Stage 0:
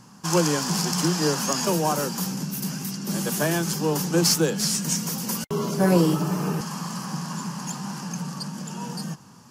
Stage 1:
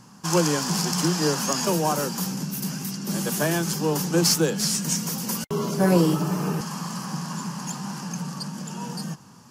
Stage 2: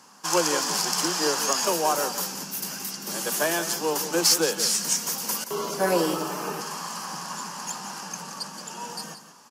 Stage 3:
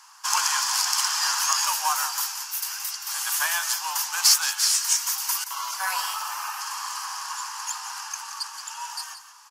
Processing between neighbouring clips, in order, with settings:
no audible change
high-pass 450 Hz 12 dB/octave; on a send: delay 174 ms -11.5 dB; on the sum: trim +1.5 dB
steep high-pass 870 Hz 48 dB/octave; trim +2.5 dB

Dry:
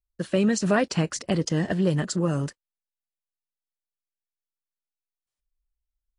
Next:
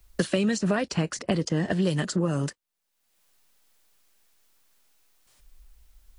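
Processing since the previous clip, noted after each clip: three bands compressed up and down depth 100%; trim -2 dB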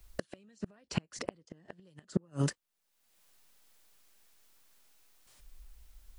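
inverted gate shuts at -17 dBFS, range -36 dB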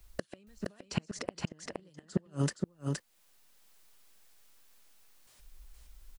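delay 469 ms -3.5 dB

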